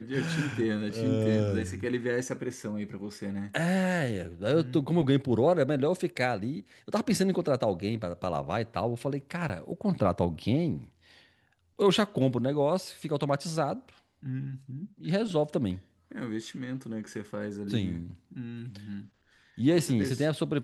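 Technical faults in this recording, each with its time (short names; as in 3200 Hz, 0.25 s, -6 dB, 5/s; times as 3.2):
9.49–9.5 gap 8.8 ms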